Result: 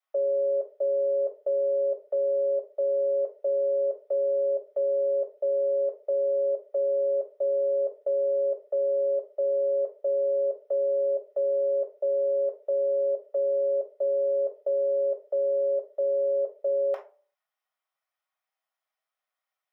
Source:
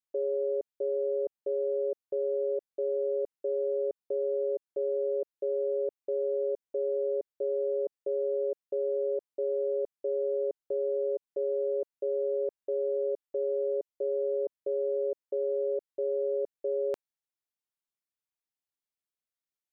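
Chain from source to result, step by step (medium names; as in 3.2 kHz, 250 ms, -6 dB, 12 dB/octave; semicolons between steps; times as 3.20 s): inverse Chebyshev high-pass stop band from 240 Hz, stop band 50 dB; reverberation RT60 0.40 s, pre-delay 3 ms, DRR 1.5 dB; peak limiter -25.5 dBFS, peak gain reduction 7 dB; trim +5 dB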